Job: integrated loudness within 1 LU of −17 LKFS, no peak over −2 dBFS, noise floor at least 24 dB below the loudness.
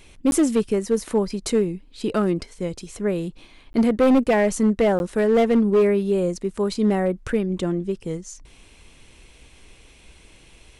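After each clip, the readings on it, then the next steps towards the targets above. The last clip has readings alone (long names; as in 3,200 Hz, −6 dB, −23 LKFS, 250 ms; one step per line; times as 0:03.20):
share of clipped samples 1.3%; peaks flattened at −12.5 dBFS; number of dropouts 3; longest dropout 11 ms; integrated loudness −21.5 LKFS; sample peak −12.5 dBFS; target loudness −17.0 LKFS
→ clipped peaks rebuilt −12.5 dBFS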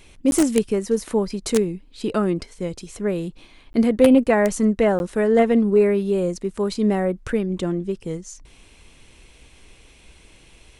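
share of clipped samples 0.0%; number of dropouts 3; longest dropout 11 ms
→ repair the gap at 0:00.31/0:03.73/0:04.99, 11 ms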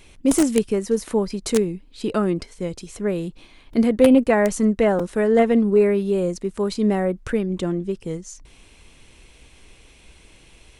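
number of dropouts 0; integrated loudness −21.0 LKFS; sample peak −3.5 dBFS; target loudness −17.0 LKFS
→ level +4 dB
brickwall limiter −2 dBFS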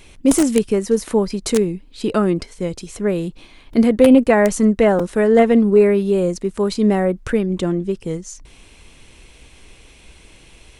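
integrated loudness −17.0 LKFS; sample peak −2.0 dBFS; background noise floor −47 dBFS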